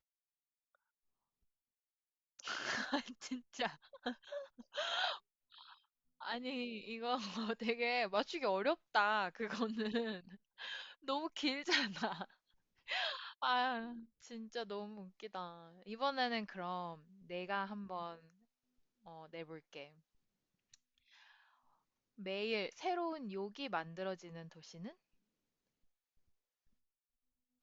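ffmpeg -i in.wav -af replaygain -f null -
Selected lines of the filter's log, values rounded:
track_gain = +19.1 dB
track_peak = 0.088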